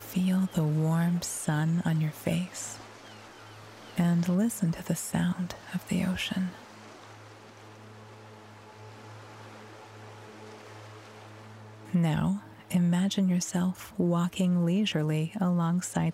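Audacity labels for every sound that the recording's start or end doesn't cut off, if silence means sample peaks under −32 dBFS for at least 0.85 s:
3.980000	6.490000	sound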